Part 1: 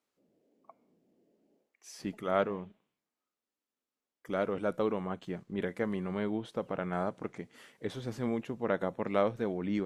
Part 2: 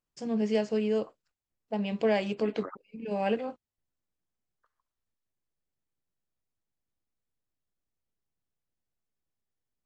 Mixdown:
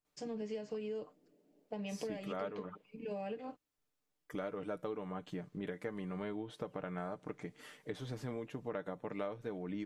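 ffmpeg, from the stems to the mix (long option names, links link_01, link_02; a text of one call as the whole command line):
ffmpeg -i stem1.wav -i stem2.wav -filter_complex "[0:a]adelay=50,volume=0dB[link_01];[1:a]acrossover=split=320[link_02][link_03];[link_03]acompressor=threshold=-32dB:ratio=6[link_04];[link_02][link_04]amix=inputs=2:normalize=0,volume=-4dB[link_05];[link_01][link_05]amix=inputs=2:normalize=0,aecho=1:1:6.7:0.46,acompressor=threshold=-39dB:ratio=4" out.wav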